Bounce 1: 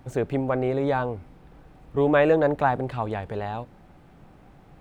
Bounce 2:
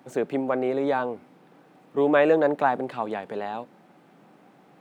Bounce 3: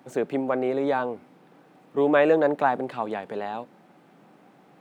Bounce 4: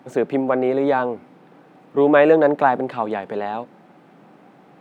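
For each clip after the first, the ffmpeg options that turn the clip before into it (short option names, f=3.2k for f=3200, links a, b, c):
-af "highpass=f=190:w=0.5412,highpass=f=190:w=1.3066"
-af anull
-af "highshelf=f=4.8k:g=-8,volume=6dB"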